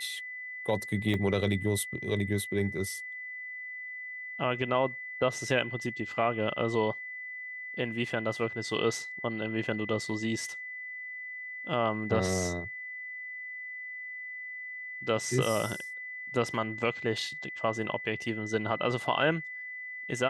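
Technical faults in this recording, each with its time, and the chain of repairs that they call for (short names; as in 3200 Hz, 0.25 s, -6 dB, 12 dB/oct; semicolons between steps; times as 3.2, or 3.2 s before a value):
tone 2000 Hz -38 dBFS
1.14 gap 2.8 ms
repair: notch 2000 Hz, Q 30; interpolate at 1.14, 2.8 ms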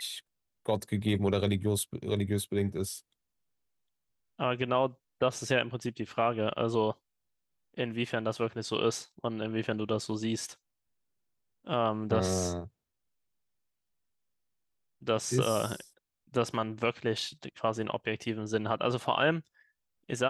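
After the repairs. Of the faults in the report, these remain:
none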